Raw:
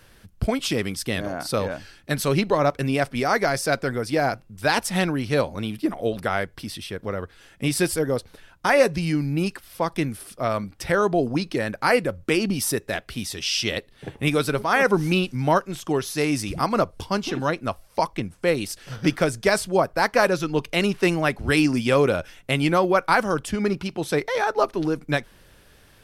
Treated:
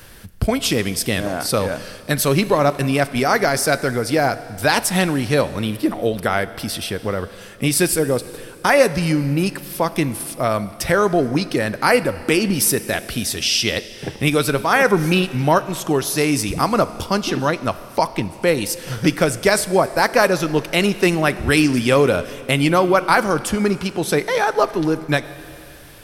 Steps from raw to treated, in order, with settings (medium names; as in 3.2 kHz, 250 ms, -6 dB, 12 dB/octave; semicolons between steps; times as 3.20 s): treble shelf 10 kHz +9.5 dB; in parallel at +1 dB: compression, threshold -33 dBFS, peak gain reduction 19.5 dB; on the sum: Schroeder reverb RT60 2.6 s, combs from 25 ms, DRR 14.5 dB; trim +2.5 dB